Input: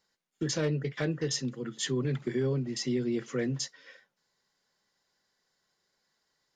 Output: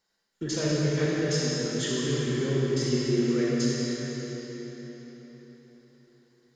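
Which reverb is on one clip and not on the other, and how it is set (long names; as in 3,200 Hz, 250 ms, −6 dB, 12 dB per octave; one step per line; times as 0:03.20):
comb and all-pass reverb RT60 4.5 s, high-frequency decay 0.85×, pre-delay 0 ms, DRR −6.5 dB
level −2 dB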